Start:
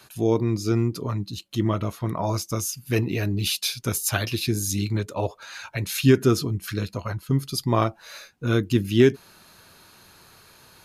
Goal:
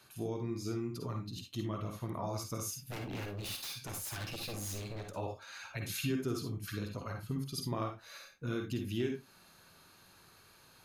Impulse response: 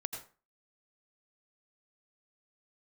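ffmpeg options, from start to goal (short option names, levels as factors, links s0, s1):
-filter_complex "[0:a]acompressor=threshold=0.0562:ratio=2.5,asettb=1/sr,asplit=3[s0][s1][s2];[s0]atrim=end=2.704[s3];[s1]atrim=start=2.7:end=5.15,asetpts=PTS-STARTPTS,afade=t=in:d=0.004:c=qsin,afade=t=out:st=2.446:d=0.004:c=qsin,aeval=exprs='0.0501*(abs(mod(val(0)/0.0501+3,4)-2)-1)':c=same[s4];[s2]atrim=start=5.146[s5];[s3][s4]acrossfade=d=0.004:c1=hsin:c2=qsin[s6];[s6][s5]acrossfade=d=0.004:c1=qsin:c2=hsin[s7];[1:a]atrim=start_sample=2205,asetrate=74970,aresample=44100[s8];[s7][s8]afir=irnorm=-1:irlink=0,volume=0.596"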